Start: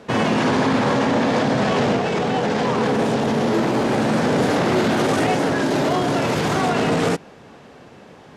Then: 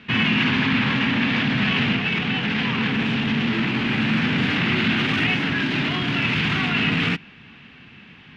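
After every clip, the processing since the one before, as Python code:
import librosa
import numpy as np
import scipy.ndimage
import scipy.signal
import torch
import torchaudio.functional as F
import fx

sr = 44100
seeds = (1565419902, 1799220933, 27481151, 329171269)

y = fx.curve_eq(x, sr, hz=(230.0, 550.0, 2700.0, 8100.0), db=(0, -19, 11, -21))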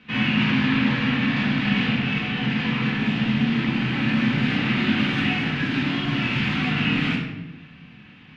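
y = fx.room_shoebox(x, sr, seeds[0], volume_m3=350.0, walls='mixed', distance_m=2.0)
y = y * librosa.db_to_amplitude(-8.5)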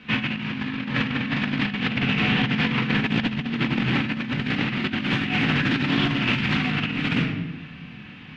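y = fx.over_compress(x, sr, threshold_db=-25.0, ratio=-0.5)
y = fx.doppler_dist(y, sr, depth_ms=0.18)
y = y * librosa.db_to_amplitude(2.0)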